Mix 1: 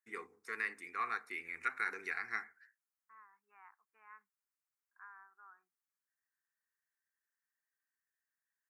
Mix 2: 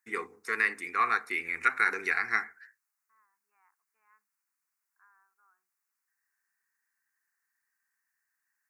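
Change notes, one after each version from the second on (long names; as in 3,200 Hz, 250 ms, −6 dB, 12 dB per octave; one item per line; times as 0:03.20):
first voice +11.0 dB
second voice −9.5 dB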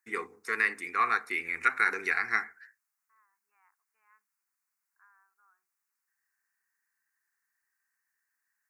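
second voice: add spectral tilt +2 dB per octave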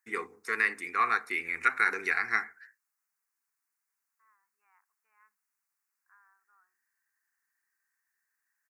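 second voice: entry +1.10 s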